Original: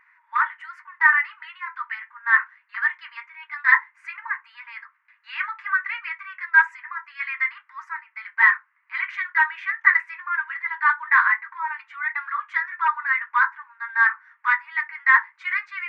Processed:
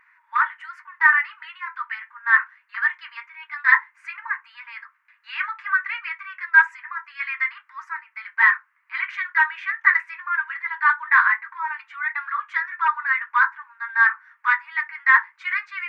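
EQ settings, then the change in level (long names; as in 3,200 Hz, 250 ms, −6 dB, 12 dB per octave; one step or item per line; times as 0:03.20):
parametric band 940 Hz −2.5 dB
parametric band 2,000 Hz −3.5 dB 0.23 octaves
+2.5 dB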